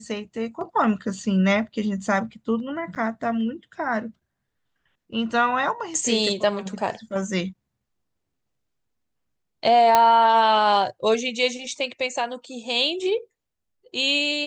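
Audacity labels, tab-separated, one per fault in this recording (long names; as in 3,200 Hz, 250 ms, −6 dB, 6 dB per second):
2.950000	2.960000	drop-out 8.1 ms
9.950000	9.950000	click −2 dBFS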